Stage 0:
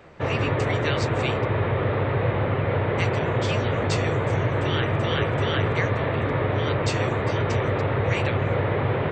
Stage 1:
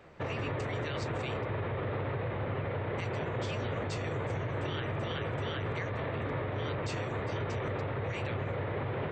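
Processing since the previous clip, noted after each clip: limiter -20 dBFS, peak gain reduction 10.5 dB; gain -6.5 dB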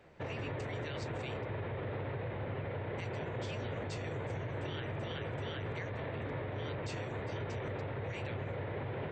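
bell 1200 Hz -6 dB 0.27 oct; gain -4.5 dB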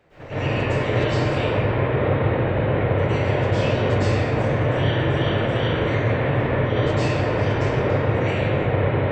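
reverb RT60 2.3 s, pre-delay 0.103 s, DRR -17.5 dB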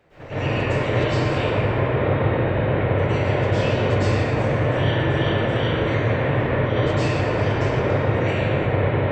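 thinning echo 0.116 s, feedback 59%, level -11 dB

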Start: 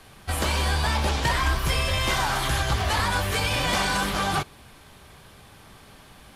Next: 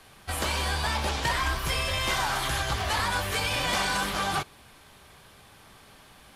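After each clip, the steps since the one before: low shelf 370 Hz -5 dB; gain -2 dB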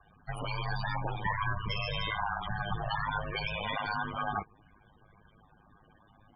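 loudest bins only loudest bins 16; ring modulator 52 Hz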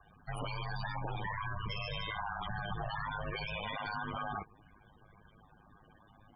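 limiter -29 dBFS, peak gain reduction 9.5 dB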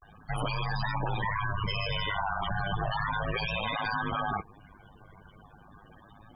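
vibrato 0.34 Hz 70 cents; gain +7.5 dB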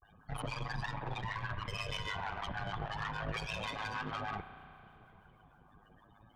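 tube stage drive 29 dB, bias 0.8; harmonic tremolo 6.4 Hz, depth 70%, crossover 750 Hz; reverb RT60 2.9 s, pre-delay 33 ms, DRR 10.5 dB

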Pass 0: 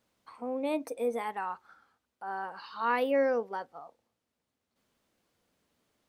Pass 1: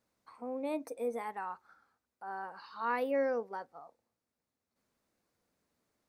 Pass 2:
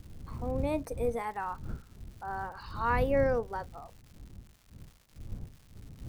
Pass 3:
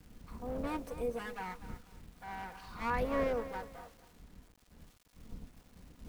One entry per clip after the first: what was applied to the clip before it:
bell 3100 Hz -7.5 dB 0.43 oct; gain -4.5 dB
wind noise 100 Hz -44 dBFS; crackle 280/s -51 dBFS; gain +4 dB
minimum comb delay 4.1 ms; bit-crush 10-bit; lo-fi delay 0.241 s, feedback 35%, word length 8-bit, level -12.5 dB; gain -5 dB

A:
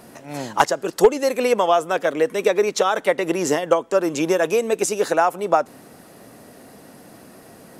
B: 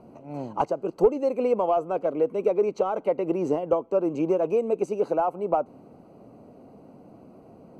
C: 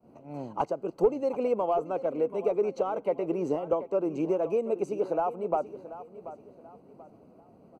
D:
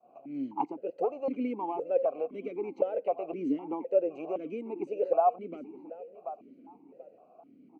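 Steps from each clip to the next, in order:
in parallel at -10.5 dB: wavefolder -12.5 dBFS; on the sum: running mean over 25 samples; gain -5 dB
expander -45 dBFS; feedback echo 0.734 s, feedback 34%, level -14.5 dB; gain -4 dB
vowel sequencer 3.9 Hz; gain +8.5 dB

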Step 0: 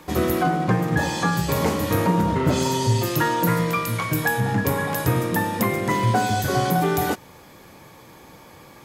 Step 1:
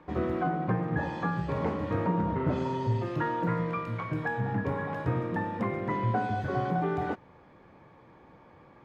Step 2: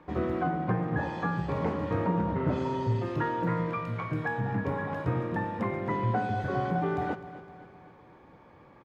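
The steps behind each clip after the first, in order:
LPF 1800 Hz 12 dB/oct; gain -8 dB
feedback echo 0.256 s, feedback 53%, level -15 dB

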